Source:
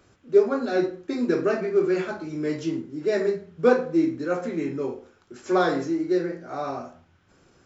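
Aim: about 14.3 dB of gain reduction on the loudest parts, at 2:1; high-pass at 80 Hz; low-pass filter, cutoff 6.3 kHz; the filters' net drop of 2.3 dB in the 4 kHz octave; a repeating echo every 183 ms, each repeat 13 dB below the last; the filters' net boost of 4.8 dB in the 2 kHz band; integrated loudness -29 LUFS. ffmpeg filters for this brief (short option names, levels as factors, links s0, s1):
-af "highpass=80,lowpass=6300,equalizer=f=2000:t=o:g=7.5,equalizer=f=4000:t=o:g=-4,acompressor=threshold=0.0112:ratio=2,aecho=1:1:183|366|549:0.224|0.0493|0.0108,volume=2"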